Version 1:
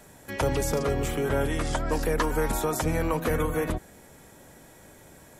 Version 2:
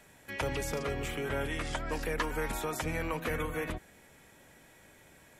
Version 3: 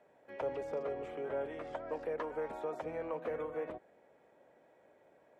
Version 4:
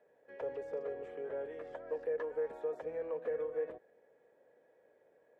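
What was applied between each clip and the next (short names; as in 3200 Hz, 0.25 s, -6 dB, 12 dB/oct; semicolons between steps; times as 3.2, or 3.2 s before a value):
bell 2400 Hz +9 dB 1.4 oct; gain -9 dB
band-pass 570 Hz, Q 1.9; gain +1 dB
small resonant body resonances 470/1700 Hz, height 12 dB, ringing for 30 ms; gain -8.5 dB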